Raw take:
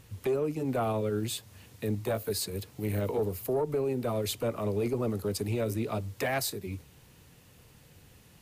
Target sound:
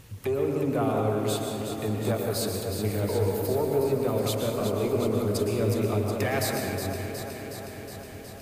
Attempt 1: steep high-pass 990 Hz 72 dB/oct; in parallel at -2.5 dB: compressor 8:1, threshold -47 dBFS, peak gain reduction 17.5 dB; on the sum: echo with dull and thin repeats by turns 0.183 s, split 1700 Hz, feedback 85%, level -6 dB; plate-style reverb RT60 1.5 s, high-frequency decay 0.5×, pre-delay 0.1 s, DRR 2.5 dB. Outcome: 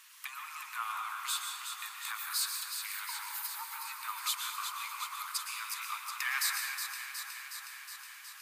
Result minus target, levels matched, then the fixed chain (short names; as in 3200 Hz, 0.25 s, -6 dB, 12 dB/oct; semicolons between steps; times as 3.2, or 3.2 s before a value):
1000 Hz band +4.0 dB
in parallel at -2.5 dB: compressor 8:1, threshold -47 dBFS, peak gain reduction 20.5 dB; on the sum: echo with dull and thin repeats by turns 0.183 s, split 1700 Hz, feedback 85%, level -6 dB; plate-style reverb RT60 1.5 s, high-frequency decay 0.5×, pre-delay 0.1 s, DRR 2.5 dB